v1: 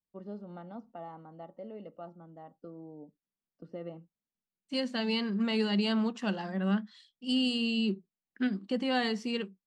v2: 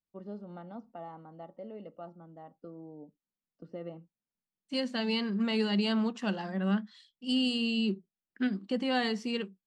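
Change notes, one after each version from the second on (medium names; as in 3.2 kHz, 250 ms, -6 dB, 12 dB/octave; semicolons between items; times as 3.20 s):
no change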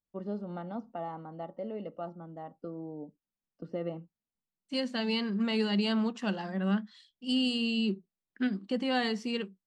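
first voice +6.0 dB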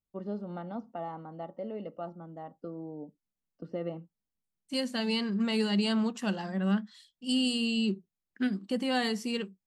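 second voice: remove band-pass 150–5000 Hz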